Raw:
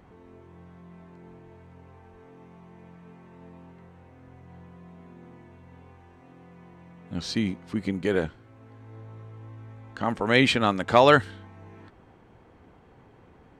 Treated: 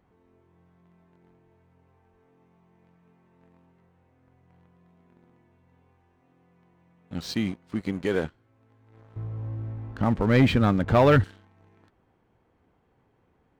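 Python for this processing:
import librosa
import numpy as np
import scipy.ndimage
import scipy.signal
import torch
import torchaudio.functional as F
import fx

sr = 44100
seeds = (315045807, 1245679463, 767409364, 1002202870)

y = fx.riaa(x, sr, side='playback', at=(9.16, 11.24))
y = fx.leveller(y, sr, passes=2)
y = y * librosa.db_to_amplitude(-8.5)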